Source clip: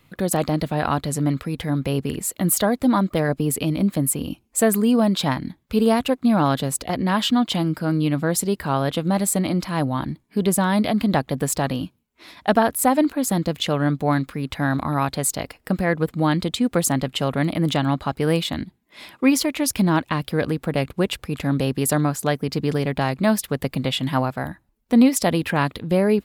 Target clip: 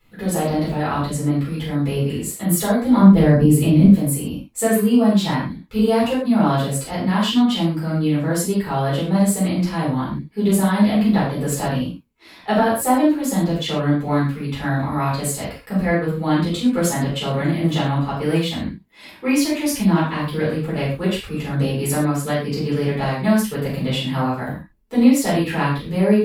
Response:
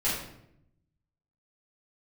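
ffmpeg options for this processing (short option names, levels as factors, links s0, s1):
-filter_complex "[0:a]asettb=1/sr,asplit=3[s0][s1][s2];[s0]atrim=end=2.974[s3];[s1]atrim=start=2.97:end=3.85,asetpts=PTS-STARTPTS,afade=t=in:d=0.004:c=qsin,afade=t=out:st=0.876:d=0.004:c=qsin,lowshelf=f=370:g=11[s4];[s2]atrim=start=3.846[s5];[s3][s4]acrossfade=d=0.004:c1=hsin:c2=qsin[s6];[s6][s5]acrossfade=d=0.004:c1=qsin:c2=hsin[s7];[1:a]atrim=start_sample=2205,atrim=end_sample=6615[s8];[s7][s8]afir=irnorm=-1:irlink=0,volume=0.355"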